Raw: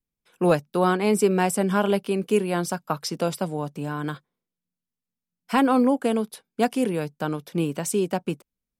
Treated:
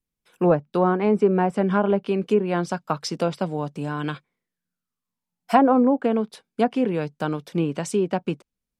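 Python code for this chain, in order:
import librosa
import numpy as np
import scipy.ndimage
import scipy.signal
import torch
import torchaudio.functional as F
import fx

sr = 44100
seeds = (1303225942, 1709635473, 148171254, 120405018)

y = fx.env_lowpass_down(x, sr, base_hz=1200.0, full_db=-16.0)
y = fx.peak_eq(y, sr, hz=fx.line((3.99, 2900.0), (5.72, 600.0)), db=14.5, octaves=0.31, at=(3.99, 5.72), fade=0.02)
y = y * librosa.db_to_amplitude(1.5)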